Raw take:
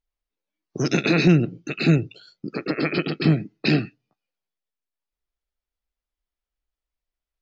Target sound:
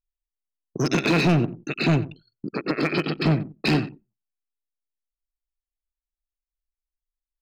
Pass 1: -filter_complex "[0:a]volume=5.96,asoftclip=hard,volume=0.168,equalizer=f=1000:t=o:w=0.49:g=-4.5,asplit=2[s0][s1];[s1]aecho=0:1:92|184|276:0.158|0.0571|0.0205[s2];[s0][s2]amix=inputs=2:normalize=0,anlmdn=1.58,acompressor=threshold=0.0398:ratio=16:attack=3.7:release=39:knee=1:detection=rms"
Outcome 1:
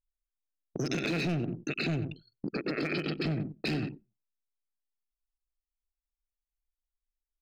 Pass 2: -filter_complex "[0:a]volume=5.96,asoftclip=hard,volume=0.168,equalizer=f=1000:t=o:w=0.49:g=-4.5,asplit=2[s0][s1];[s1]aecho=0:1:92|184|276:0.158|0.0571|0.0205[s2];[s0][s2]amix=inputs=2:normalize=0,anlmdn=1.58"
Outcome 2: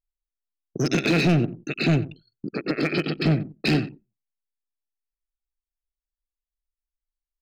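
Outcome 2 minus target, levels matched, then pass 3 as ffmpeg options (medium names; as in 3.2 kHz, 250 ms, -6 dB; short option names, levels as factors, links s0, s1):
1 kHz band -4.0 dB
-filter_complex "[0:a]volume=5.96,asoftclip=hard,volume=0.168,equalizer=f=1000:t=o:w=0.49:g=7,asplit=2[s0][s1];[s1]aecho=0:1:92|184|276:0.158|0.0571|0.0205[s2];[s0][s2]amix=inputs=2:normalize=0,anlmdn=1.58"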